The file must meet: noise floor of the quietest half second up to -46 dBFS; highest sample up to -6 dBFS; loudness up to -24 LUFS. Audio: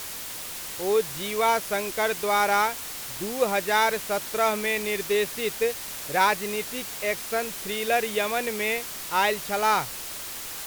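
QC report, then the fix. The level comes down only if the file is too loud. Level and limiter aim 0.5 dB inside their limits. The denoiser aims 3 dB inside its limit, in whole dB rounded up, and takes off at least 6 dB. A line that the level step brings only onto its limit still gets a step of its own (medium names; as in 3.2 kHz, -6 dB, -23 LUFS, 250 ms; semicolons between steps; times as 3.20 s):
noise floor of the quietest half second -36 dBFS: fail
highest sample -8.5 dBFS: pass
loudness -25.5 LUFS: pass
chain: noise reduction 13 dB, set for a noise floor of -36 dBFS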